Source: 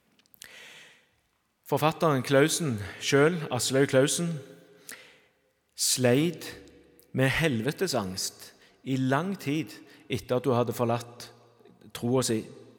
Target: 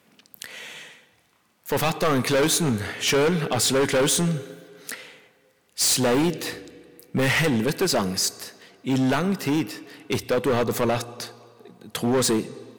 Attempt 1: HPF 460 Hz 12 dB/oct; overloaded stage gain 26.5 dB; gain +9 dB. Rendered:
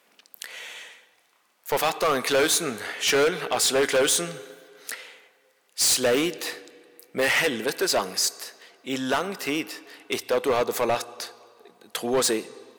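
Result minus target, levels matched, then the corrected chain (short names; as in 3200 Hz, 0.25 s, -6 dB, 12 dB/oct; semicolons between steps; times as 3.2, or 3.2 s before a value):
125 Hz band -13.5 dB
HPF 120 Hz 12 dB/oct; overloaded stage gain 26.5 dB; gain +9 dB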